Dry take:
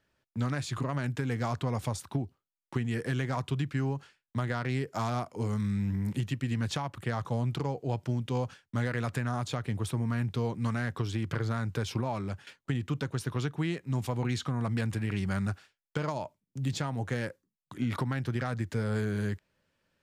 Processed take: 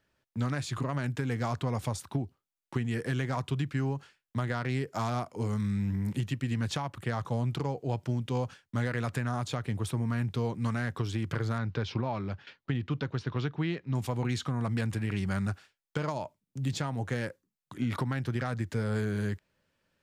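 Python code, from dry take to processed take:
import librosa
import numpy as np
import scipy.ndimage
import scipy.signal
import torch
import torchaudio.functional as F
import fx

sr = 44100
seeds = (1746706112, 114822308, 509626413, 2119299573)

y = fx.lowpass(x, sr, hz=4900.0, slope=24, at=(11.58, 13.95))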